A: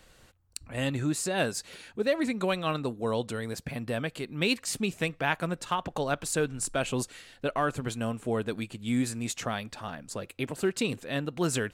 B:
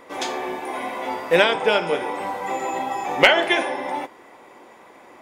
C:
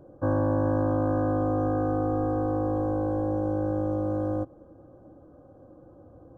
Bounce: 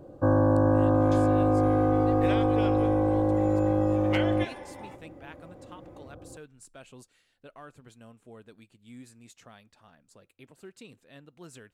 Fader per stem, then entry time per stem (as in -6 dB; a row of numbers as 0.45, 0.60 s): -19.5, -18.5, +3.0 dB; 0.00, 0.90, 0.00 s